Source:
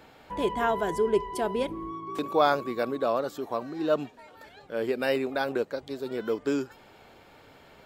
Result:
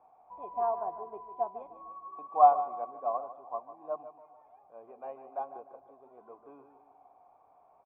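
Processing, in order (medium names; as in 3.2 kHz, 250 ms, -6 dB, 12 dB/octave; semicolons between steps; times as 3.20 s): companding laws mixed up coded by mu; cascade formant filter a; on a send: feedback delay 150 ms, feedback 46%, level -9 dB; on the sum: upward expansion 1.5:1, over -47 dBFS; trim +8.5 dB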